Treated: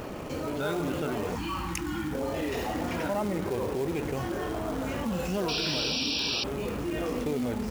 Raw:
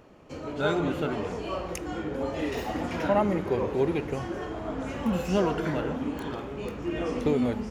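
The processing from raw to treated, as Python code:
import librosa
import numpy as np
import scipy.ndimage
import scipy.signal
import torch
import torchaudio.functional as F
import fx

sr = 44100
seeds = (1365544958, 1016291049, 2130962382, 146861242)

y = fx.spec_box(x, sr, start_s=1.35, length_s=0.78, low_hz=360.0, high_hz=770.0, gain_db=-22)
y = fx.quant_float(y, sr, bits=2)
y = fx.spec_paint(y, sr, seeds[0], shape='noise', start_s=5.48, length_s=0.96, low_hz=2300.0, high_hz=5800.0, level_db=-27.0)
y = fx.env_flatten(y, sr, amount_pct=70)
y = F.gain(torch.from_numpy(y), -7.5).numpy()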